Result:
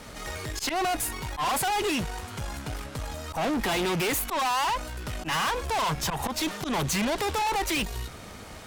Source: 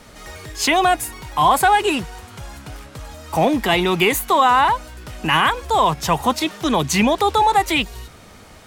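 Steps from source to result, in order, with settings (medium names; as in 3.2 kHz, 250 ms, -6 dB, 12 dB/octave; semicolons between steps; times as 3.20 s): slow attack 126 ms; valve stage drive 28 dB, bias 0.5; trim +3 dB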